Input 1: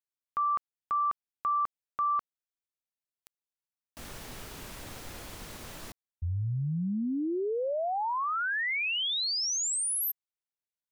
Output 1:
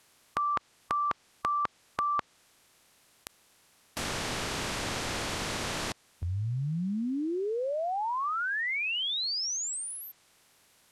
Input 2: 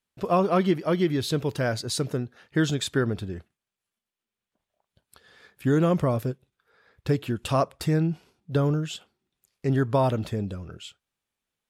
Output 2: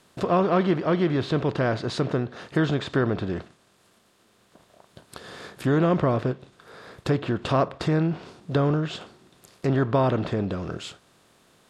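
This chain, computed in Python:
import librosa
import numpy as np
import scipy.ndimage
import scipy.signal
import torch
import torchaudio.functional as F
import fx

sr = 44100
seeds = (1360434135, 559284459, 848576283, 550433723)

y = fx.bin_compress(x, sr, power=0.6)
y = fx.env_lowpass_down(y, sr, base_hz=2900.0, full_db=-20.5)
y = F.gain(torch.from_numpy(y), -1.5).numpy()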